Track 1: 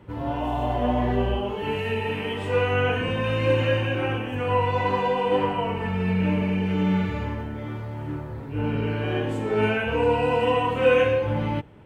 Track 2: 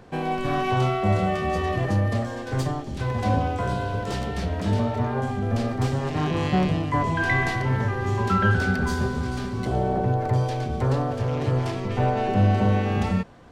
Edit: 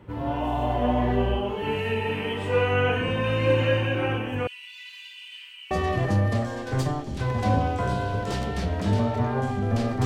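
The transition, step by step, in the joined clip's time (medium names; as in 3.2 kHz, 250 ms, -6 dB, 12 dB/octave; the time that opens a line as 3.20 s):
track 1
4.47–5.71 s: inverse Chebyshev high-pass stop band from 810 Hz, stop band 60 dB
5.71 s: go over to track 2 from 1.51 s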